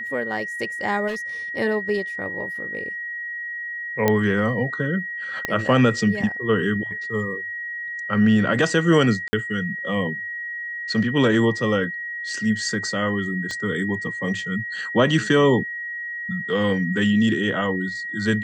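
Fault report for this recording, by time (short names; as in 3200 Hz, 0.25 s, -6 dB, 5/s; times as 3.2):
tone 1900 Hz -28 dBFS
1.07–1.17 clipped -24 dBFS
4.08 pop -5 dBFS
5.45 pop -9 dBFS
9.28–9.33 gap 50 ms
13.51 pop -18 dBFS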